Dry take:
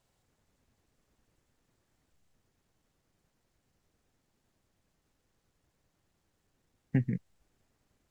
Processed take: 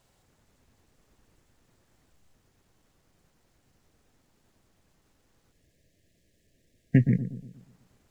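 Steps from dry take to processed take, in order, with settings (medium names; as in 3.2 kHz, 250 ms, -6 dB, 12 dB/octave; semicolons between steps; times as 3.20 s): time-frequency box 5.52–7.54 s, 690–1600 Hz -21 dB; bucket-brigade echo 119 ms, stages 1024, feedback 46%, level -11 dB; trim +8 dB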